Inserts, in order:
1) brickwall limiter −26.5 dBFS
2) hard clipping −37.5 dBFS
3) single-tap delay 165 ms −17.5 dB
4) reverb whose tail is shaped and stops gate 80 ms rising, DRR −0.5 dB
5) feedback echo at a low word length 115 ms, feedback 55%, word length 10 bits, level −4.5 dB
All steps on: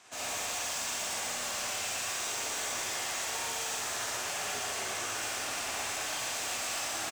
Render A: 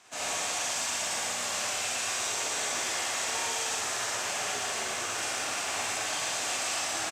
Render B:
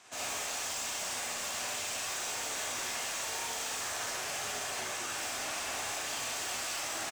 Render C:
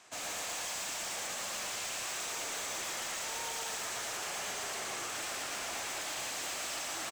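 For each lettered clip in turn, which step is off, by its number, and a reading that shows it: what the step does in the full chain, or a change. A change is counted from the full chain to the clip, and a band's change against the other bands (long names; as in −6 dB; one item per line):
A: 2, distortion level −9 dB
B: 5, change in crest factor −2.0 dB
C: 4, change in crest factor −5.0 dB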